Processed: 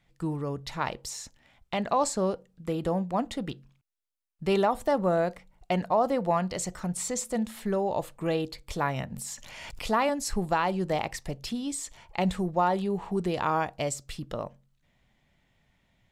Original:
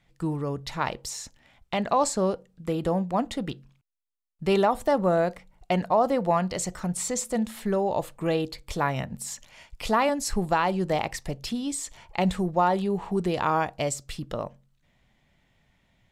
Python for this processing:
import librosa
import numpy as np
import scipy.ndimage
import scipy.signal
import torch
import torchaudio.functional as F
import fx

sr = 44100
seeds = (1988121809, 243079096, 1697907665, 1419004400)

y = fx.pre_swell(x, sr, db_per_s=24.0, at=(9.16, 9.84))
y = y * librosa.db_to_amplitude(-2.5)